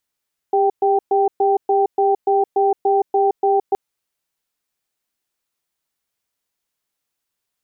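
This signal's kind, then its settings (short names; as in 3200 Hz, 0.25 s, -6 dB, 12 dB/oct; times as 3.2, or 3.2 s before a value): cadence 399 Hz, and 782 Hz, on 0.17 s, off 0.12 s, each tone -15.5 dBFS 3.22 s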